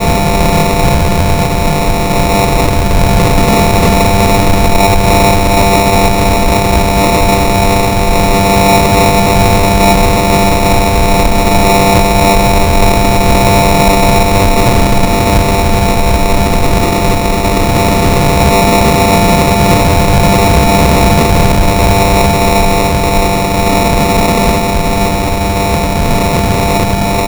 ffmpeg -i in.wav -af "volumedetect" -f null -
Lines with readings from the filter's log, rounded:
mean_volume: -8.1 dB
max_volume: -1.8 dB